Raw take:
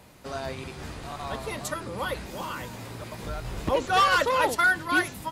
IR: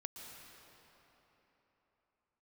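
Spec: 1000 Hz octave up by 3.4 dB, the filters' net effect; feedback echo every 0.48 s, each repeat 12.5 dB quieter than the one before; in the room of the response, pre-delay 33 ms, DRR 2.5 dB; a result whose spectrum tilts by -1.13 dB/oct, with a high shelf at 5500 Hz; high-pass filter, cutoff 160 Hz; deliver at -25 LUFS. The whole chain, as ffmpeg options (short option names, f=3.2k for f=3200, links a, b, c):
-filter_complex "[0:a]highpass=160,equalizer=f=1k:t=o:g=4.5,highshelf=f=5.5k:g=-7.5,aecho=1:1:480|960|1440:0.237|0.0569|0.0137,asplit=2[a][b];[1:a]atrim=start_sample=2205,adelay=33[c];[b][c]afir=irnorm=-1:irlink=0,volume=0.5dB[d];[a][d]amix=inputs=2:normalize=0,volume=-3.5dB"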